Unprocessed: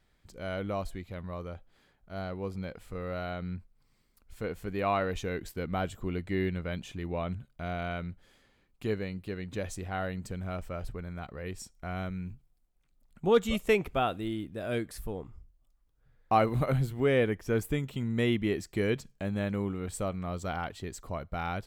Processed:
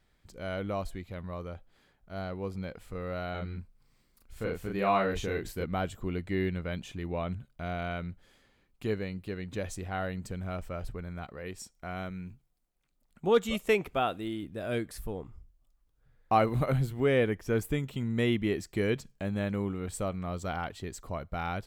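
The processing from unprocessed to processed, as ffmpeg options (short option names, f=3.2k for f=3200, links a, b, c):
-filter_complex "[0:a]asettb=1/sr,asplit=3[a][b][c];[a]atrim=end=3.314[d];[b]atrim=start=3.31:end=5.64,asetpts=PTS-STARTPTS,afade=t=in:d=0.004:c=qsin,afade=t=out:st=2.326:d=0.004:c=qsin,asplit=2[e][f];[f]adelay=36,volume=-2.5dB[g];[e][g]amix=inputs=2:normalize=0,atrim=end_sample=102753[h];[c]atrim=start=5.636[i];[d][h]acrossfade=d=0.004:c1=hsin:c2=qsin[j];[j][i]acrossfade=d=0.004:c1=qsin:c2=hsin,asettb=1/sr,asplit=3[k][l][m];[k]atrim=end=11.254[n];[l]atrim=start=11.25:end=14.43,asetpts=PTS-STARTPTS,afade=t=in:d=0.004:c=qsin,afade=t=out:st=3.176:d=0.004:c=qsin,lowshelf=f=120:g=-8.5[o];[m]atrim=start=14.426[p];[n][o]acrossfade=d=0.004:c1=hsin:c2=qsin[q];[q][p]acrossfade=d=0.004:c1=qsin:c2=hsin"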